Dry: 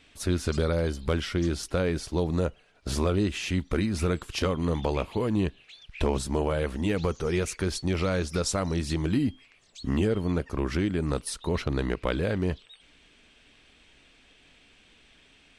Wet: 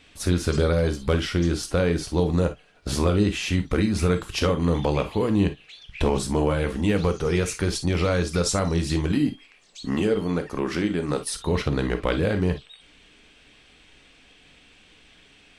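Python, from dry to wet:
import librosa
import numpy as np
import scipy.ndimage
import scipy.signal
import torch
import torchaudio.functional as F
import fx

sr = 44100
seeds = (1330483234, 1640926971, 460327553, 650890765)

y = fx.peak_eq(x, sr, hz=74.0, db=-12.5, octaves=1.6, at=(9.12, 11.34))
y = fx.rev_gated(y, sr, seeds[0], gate_ms=80, shape='flat', drr_db=7.0)
y = F.gain(torch.from_numpy(y), 3.5).numpy()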